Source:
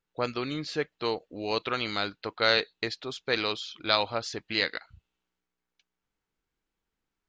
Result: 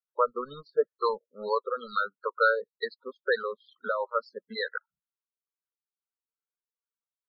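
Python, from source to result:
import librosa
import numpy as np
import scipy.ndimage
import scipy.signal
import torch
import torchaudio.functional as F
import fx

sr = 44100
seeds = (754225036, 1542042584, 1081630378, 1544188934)

y = fx.weighting(x, sr, curve='A')
y = fx.transient(y, sr, attack_db=7, sustain_db=-3)
y = fx.leveller(y, sr, passes=3)
y = fx.fixed_phaser(y, sr, hz=480.0, stages=8)
y = fx.spec_topn(y, sr, count=16)
y = fx.filter_lfo_lowpass(y, sr, shape='sine', hz=2.2, low_hz=660.0, high_hz=3200.0, q=1.2)
y = y * librosa.db_to_amplitude(-7.0)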